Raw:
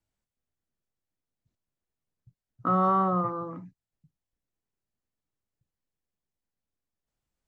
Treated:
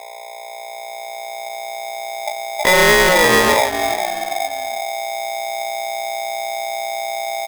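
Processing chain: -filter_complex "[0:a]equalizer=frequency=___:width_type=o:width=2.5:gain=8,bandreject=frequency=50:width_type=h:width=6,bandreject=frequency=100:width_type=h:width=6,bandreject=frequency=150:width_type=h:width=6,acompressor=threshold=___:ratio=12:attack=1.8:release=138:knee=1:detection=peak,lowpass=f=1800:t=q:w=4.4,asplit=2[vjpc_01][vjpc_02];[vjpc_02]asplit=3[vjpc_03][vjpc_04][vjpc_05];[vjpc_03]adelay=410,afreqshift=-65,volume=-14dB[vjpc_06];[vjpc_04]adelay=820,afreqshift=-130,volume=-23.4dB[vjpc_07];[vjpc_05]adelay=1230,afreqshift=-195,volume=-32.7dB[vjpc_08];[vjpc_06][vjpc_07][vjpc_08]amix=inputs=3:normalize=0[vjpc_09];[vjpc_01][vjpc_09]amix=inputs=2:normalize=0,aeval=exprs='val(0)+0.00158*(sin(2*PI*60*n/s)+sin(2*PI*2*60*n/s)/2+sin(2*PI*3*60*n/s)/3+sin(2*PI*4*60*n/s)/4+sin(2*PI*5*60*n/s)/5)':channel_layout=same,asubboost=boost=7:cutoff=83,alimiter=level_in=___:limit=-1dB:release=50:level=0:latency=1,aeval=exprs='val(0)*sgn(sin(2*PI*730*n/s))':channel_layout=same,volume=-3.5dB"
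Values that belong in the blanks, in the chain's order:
65, -30dB, 25.5dB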